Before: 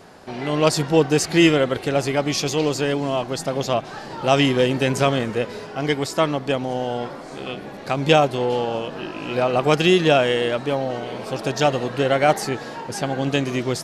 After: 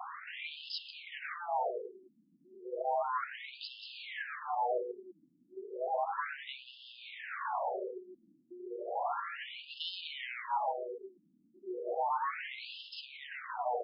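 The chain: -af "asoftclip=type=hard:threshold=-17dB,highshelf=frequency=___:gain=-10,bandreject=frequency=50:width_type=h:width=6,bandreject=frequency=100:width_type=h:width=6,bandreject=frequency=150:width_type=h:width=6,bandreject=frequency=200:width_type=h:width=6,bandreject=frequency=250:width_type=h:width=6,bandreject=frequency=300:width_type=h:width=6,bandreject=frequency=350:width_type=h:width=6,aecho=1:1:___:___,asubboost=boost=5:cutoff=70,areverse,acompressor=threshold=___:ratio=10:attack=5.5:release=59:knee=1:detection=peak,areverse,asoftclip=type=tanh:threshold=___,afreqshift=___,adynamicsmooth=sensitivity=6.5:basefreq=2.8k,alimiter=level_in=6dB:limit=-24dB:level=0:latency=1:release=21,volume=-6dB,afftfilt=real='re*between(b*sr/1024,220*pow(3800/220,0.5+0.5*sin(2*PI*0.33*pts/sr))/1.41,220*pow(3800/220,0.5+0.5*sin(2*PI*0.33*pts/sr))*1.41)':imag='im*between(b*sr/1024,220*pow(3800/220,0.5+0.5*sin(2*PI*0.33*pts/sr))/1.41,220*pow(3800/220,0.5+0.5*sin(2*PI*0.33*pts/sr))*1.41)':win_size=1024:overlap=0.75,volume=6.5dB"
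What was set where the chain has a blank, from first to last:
10k, 186, 0.282, -29dB, -31dB, 360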